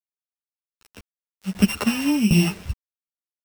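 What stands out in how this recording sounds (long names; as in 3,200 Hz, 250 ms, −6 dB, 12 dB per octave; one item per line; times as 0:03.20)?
a buzz of ramps at a fixed pitch in blocks of 16 samples
tremolo saw down 1.3 Hz, depth 85%
a quantiser's noise floor 8 bits, dither none
a shimmering, thickened sound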